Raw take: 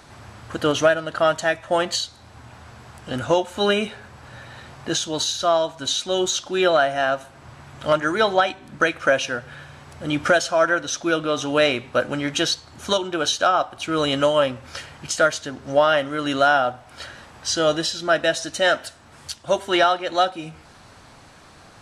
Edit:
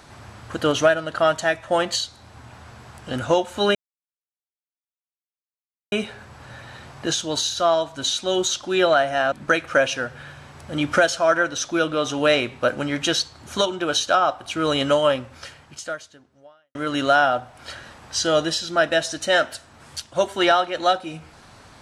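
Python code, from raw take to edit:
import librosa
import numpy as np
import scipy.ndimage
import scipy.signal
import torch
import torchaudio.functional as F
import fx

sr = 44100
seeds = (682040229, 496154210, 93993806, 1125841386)

y = fx.edit(x, sr, fx.insert_silence(at_s=3.75, length_s=2.17),
    fx.cut(start_s=7.15, length_s=1.49),
    fx.fade_out_span(start_s=14.38, length_s=1.69, curve='qua'), tone=tone)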